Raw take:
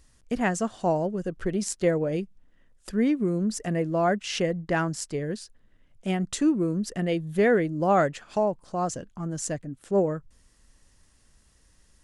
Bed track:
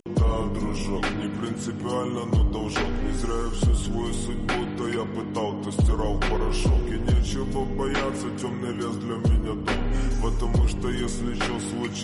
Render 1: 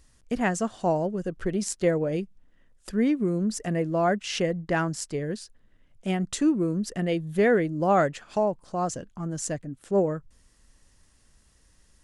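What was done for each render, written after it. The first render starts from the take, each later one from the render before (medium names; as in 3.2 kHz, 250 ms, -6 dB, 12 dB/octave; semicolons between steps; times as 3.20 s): no audible change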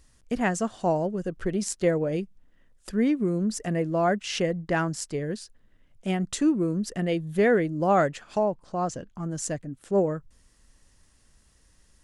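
8.39–9.15 s: distance through air 54 m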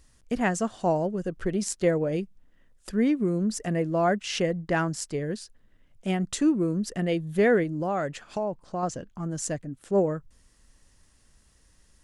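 7.63–8.83 s: compression 3:1, threshold -26 dBFS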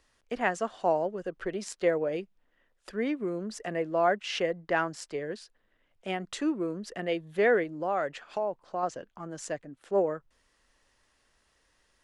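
three-band isolator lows -15 dB, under 360 Hz, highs -12 dB, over 4.4 kHz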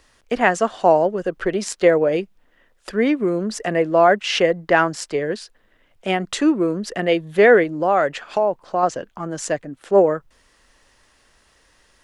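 trim +12 dB; peak limiter -3 dBFS, peak gain reduction 2 dB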